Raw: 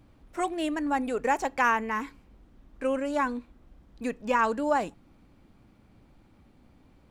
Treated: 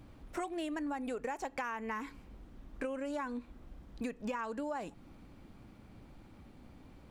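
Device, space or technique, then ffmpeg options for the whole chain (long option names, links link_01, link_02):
serial compression, leveller first: -af "acompressor=threshold=-29dB:ratio=2.5,acompressor=threshold=-39dB:ratio=5,volume=3dB"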